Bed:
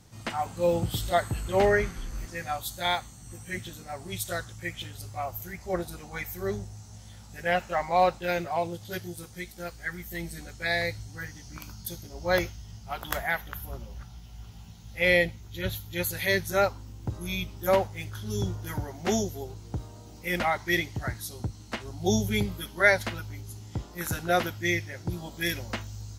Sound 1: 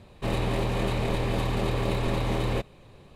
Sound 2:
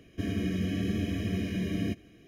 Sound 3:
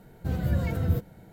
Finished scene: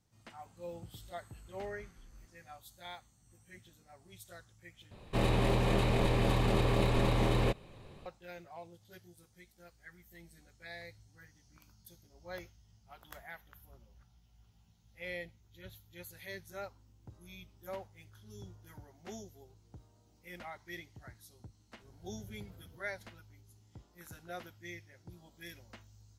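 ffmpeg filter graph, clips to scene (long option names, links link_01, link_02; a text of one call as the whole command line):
ffmpeg -i bed.wav -i cue0.wav -i cue1.wav -i cue2.wav -filter_complex "[0:a]volume=-20dB[link_01];[3:a]acompressor=threshold=-39dB:ratio=6:attack=3.2:release=140:knee=1:detection=peak[link_02];[link_01]asplit=2[link_03][link_04];[link_03]atrim=end=4.914[link_05];[1:a]atrim=end=3.15,asetpts=PTS-STARTPTS,volume=-2dB[link_06];[link_04]atrim=start=8.056[link_07];[link_02]atrim=end=1.32,asetpts=PTS-STARTPTS,volume=-15.5dB,afade=type=in:duration=0.004:curve=hsin,afade=type=out:start_time=1.316:duration=0.004:curve=hsin,adelay=21780[link_08];[link_05][link_06]acrossfade=duration=0.004:curve1=hsin:curve2=hsin[link_09];[link_09][link_07]acrossfade=duration=0.004:curve1=hsin:curve2=hsin[link_10];[link_10][link_08]amix=inputs=2:normalize=0" out.wav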